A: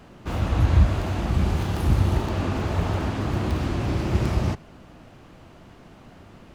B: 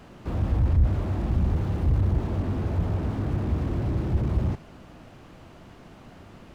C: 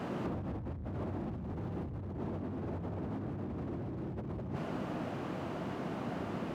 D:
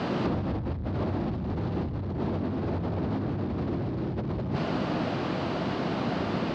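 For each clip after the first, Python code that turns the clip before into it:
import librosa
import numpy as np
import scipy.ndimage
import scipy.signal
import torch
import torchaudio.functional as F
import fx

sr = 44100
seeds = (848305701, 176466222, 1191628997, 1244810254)

y1 = fx.slew_limit(x, sr, full_power_hz=12.0)
y2 = scipy.signal.sosfilt(scipy.signal.butter(2, 150.0, 'highpass', fs=sr, output='sos'), y1)
y2 = fx.high_shelf(y2, sr, hz=2200.0, db=-11.5)
y2 = fx.over_compress(y2, sr, threshold_db=-41.0, ratio=-1.0)
y2 = y2 * librosa.db_to_amplitude(3.0)
y3 = fx.lowpass_res(y2, sr, hz=4500.0, q=2.6)
y3 = y3 + 10.0 ** (-17.0 / 20.0) * np.pad(y3, (int(182 * sr / 1000.0), 0))[:len(y3)]
y3 = y3 * librosa.db_to_amplitude(9.0)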